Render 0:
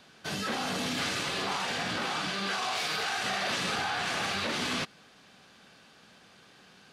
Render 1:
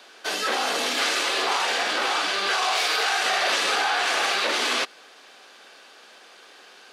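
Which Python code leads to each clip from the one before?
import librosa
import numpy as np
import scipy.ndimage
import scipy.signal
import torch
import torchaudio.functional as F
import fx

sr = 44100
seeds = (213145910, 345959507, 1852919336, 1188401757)

y = scipy.signal.sosfilt(scipy.signal.butter(4, 350.0, 'highpass', fs=sr, output='sos'), x)
y = y * 10.0 ** (8.5 / 20.0)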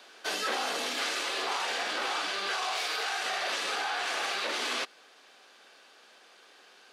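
y = fx.rider(x, sr, range_db=4, speed_s=0.5)
y = y * 10.0 ** (-8.0 / 20.0)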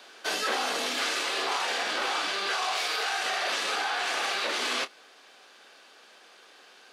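y = fx.doubler(x, sr, ms=28.0, db=-13.5)
y = y * 10.0 ** (2.5 / 20.0)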